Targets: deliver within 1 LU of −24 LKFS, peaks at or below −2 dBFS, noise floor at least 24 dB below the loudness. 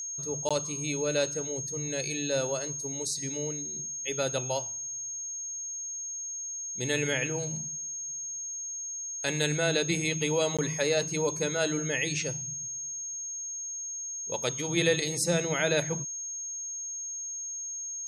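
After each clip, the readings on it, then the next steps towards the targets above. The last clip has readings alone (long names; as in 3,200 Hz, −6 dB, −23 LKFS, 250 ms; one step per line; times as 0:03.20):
number of dropouts 2; longest dropout 16 ms; interfering tone 6,500 Hz; level of the tone −34 dBFS; integrated loudness −30.0 LKFS; sample peak −13.0 dBFS; target loudness −24.0 LKFS
→ repair the gap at 0:00.49/0:10.57, 16 ms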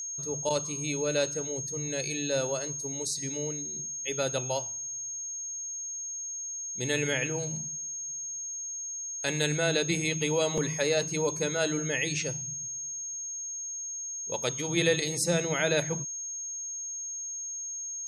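number of dropouts 0; interfering tone 6,500 Hz; level of the tone −34 dBFS
→ notch filter 6,500 Hz, Q 30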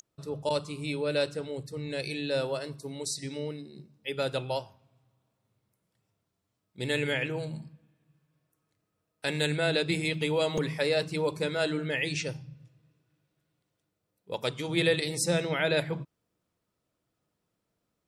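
interfering tone none found; integrated loudness −30.5 LKFS; sample peak −13.5 dBFS; target loudness −24.0 LKFS
→ level +6.5 dB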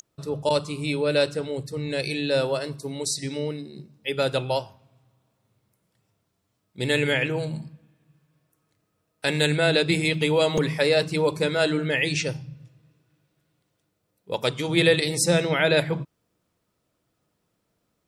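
integrated loudness −24.0 LKFS; sample peak −7.0 dBFS; background noise floor −75 dBFS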